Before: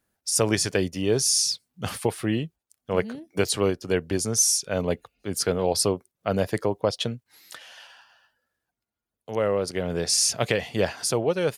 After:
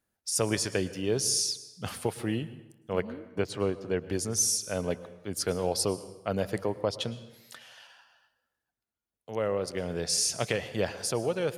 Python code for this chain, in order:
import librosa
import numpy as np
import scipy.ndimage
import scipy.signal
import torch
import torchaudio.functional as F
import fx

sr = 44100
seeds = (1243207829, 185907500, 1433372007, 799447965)

y = fx.lowpass(x, sr, hz=1900.0, slope=6, at=(3.0, 4.0), fade=0.02)
y = fx.rev_plate(y, sr, seeds[0], rt60_s=1.0, hf_ratio=0.75, predelay_ms=95, drr_db=15.0)
y = y * librosa.db_to_amplitude(-5.5)